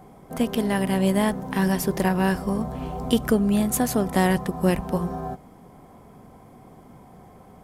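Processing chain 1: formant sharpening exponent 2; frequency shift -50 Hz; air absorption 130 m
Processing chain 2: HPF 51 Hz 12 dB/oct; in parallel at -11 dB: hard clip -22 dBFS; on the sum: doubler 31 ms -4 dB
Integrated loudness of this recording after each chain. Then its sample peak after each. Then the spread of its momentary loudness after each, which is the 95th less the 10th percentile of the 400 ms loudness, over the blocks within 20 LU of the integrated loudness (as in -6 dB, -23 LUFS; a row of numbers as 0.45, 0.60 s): -24.5, -20.5 LUFS; -8.5, -6.0 dBFS; 10, 9 LU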